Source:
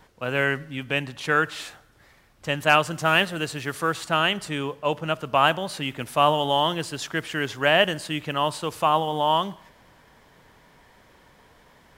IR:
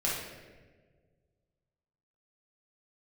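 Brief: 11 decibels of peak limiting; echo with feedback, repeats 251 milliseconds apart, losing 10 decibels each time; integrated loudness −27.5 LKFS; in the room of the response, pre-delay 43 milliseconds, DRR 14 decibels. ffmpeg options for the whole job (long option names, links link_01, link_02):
-filter_complex "[0:a]alimiter=limit=-15dB:level=0:latency=1,aecho=1:1:251|502|753|1004:0.316|0.101|0.0324|0.0104,asplit=2[link_01][link_02];[1:a]atrim=start_sample=2205,adelay=43[link_03];[link_02][link_03]afir=irnorm=-1:irlink=0,volume=-22dB[link_04];[link_01][link_04]amix=inputs=2:normalize=0,volume=0.5dB"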